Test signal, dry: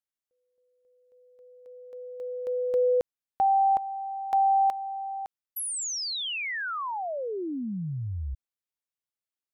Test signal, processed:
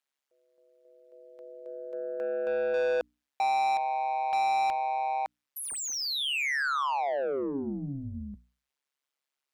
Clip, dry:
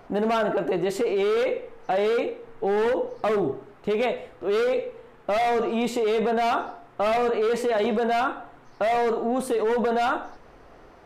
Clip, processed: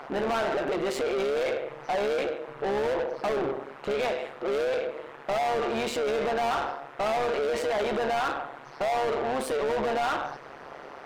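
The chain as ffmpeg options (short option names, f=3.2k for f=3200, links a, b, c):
-filter_complex "[0:a]tremolo=f=140:d=0.919,asplit=2[a][b];[b]highpass=f=720:p=1,volume=27dB,asoftclip=type=tanh:threshold=-14dB[c];[a][c]amix=inputs=2:normalize=0,lowpass=f=3.6k:p=1,volume=-6dB,bandreject=f=60:t=h:w=6,bandreject=f=120:t=h:w=6,bandreject=f=180:t=h:w=6,bandreject=f=240:t=h:w=6,bandreject=f=300:t=h:w=6,volume=-6dB"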